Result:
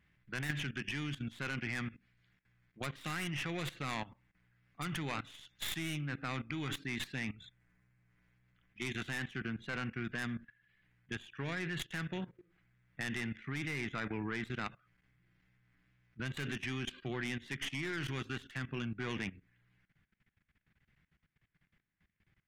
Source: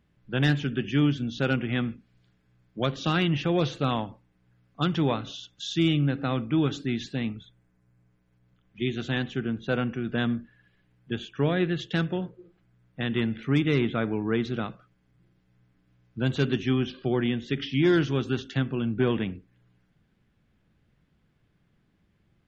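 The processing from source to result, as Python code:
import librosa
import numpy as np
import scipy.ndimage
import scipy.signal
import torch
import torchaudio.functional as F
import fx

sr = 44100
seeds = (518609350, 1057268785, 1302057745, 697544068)

y = fx.tracing_dist(x, sr, depth_ms=0.22)
y = fx.rider(y, sr, range_db=10, speed_s=2.0)
y = fx.graphic_eq(y, sr, hz=(250, 500, 2000), db=(-3, -6, 12))
y = fx.wow_flutter(y, sr, seeds[0], rate_hz=2.1, depth_cents=29.0)
y = fx.level_steps(y, sr, step_db=17)
y = y * 10.0 ** (-4.0 / 20.0)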